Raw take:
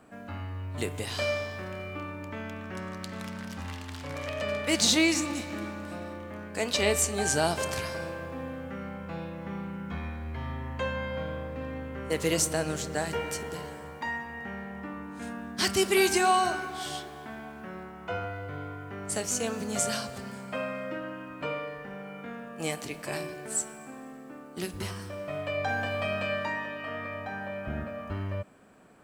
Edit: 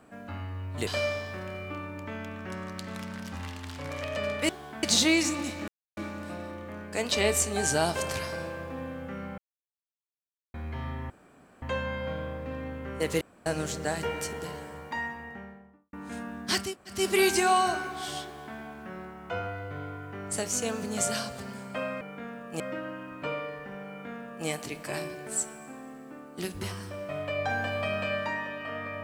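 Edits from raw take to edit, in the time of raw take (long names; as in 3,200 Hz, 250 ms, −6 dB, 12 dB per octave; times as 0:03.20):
0:00.87–0:01.12: remove
0:05.59: splice in silence 0.29 s
0:09.00–0:10.16: silence
0:10.72: splice in room tone 0.52 s
0:12.31–0:12.56: fill with room tone
0:14.13–0:15.03: fade out and dull
0:15.75: splice in room tone 0.32 s, crossfade 0.24 s
0:17.02–0:17.36: duplicate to 0:04.74
0:22.07–0:22.66: duplicate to 0:20.79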